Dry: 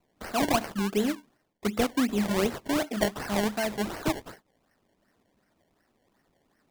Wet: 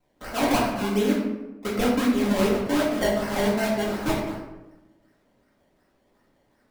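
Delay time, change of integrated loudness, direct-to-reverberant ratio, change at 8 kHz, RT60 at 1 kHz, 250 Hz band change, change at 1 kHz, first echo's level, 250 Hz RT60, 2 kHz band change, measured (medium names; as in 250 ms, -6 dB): no echo, +4.0 dB, -6.0 dB, +1.0 dB, 1.0 s, +4.5 dB, +3.5 dB, no echo, 1.3 s, +3.5 dB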